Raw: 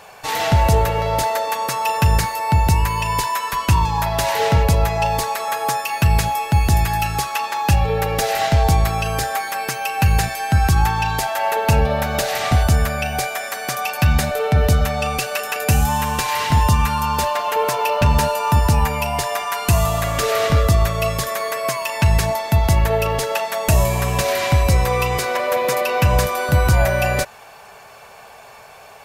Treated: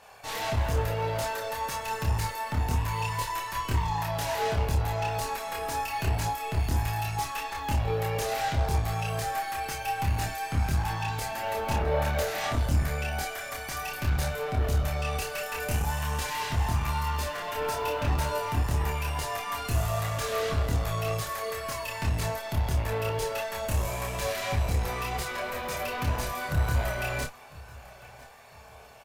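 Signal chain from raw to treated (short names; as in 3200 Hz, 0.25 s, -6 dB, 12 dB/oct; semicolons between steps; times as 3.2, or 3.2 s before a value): tube stage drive 18 dB, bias 0.55; chorus voices 6, 0.69 Hz, delay 26 ms, depth 1.8 ms; doubler 29 ms -5 dB; feedback echo 1.001 s, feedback 39%, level -21.5 dB; gain -5 dB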